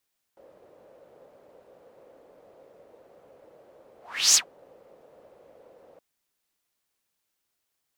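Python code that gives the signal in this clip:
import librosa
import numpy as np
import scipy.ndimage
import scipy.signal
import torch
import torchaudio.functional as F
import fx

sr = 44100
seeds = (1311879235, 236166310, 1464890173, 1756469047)

y = fx.whoosh(sr, seeds[0], length_s=5.62, peak_s=3.98, rise_s=0.38, fall_s=0.11, ends_hz=530.0, peak_hz=6600.0, q=4.9, swell_db=38.0)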